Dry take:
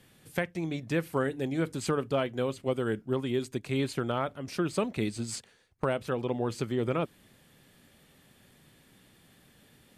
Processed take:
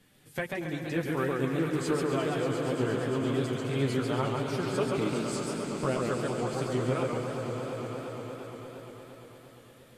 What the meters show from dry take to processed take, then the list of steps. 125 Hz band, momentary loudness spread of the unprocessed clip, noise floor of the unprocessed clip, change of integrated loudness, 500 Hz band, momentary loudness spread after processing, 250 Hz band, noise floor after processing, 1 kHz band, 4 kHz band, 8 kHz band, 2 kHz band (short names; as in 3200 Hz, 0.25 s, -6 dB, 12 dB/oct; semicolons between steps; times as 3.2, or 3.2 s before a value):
+2.5 dB, 5 LU, -62 dBFS, +1.0 dB, +1.5 dB, 13 LU, +1.5 dB, -54 dBFS, +2.0 dB, +1.5 dB, +1.0 dB, +1.5 dB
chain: chorus voices 4, 0.24 Hz, delay 11 ms, depth 4.4 ms; swelling echo 0.116 s, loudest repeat 5, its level -11.5 dB; warbling echo 0.138 s, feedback 44%, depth 150 cents, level -3 dB